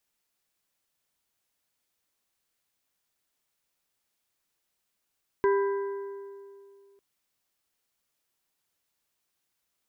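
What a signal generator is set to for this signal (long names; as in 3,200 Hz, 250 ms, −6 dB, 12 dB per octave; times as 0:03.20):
struck metal plate, lowest mode 397 Hz, modes 4, decay 2.41 s, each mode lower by 7 dB, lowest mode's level −19.5 dB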